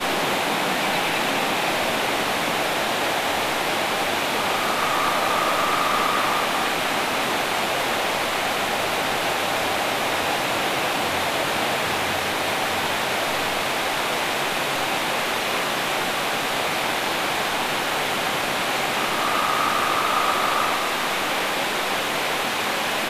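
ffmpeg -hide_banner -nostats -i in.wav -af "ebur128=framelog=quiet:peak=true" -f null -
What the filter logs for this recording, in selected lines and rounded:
Integrated loudness:
  I:         -21.8 LUFS
  Threshold: -31.8 LUFS
Loudness range:
  LRA:         1.6 LU
  Threshold: -41.8 LUFS
  LRA low:   -22.5 LUFS
  LRA high:  -20.9 LUFS
True peak:
  Peak:       -8.2 dBFS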